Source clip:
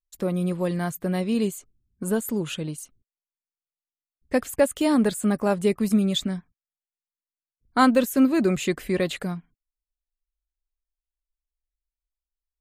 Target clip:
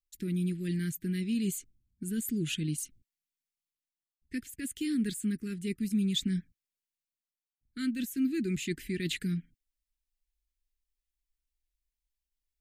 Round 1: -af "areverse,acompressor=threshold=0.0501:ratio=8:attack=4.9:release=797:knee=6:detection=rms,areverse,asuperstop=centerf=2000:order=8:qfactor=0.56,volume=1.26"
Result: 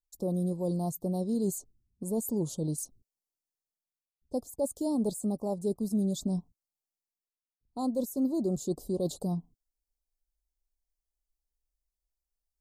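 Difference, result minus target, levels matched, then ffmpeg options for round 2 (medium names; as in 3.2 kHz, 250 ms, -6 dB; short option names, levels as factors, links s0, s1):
1 kHz band +20.0 dB
-af "areverse,acompressor=threshold=0.0501:ratio=8:attack=4.9:release=797:knee=6:detection=rms,areverse,asuperstop=centerf=780:order=8:qfactor=0.56,volume=1.26"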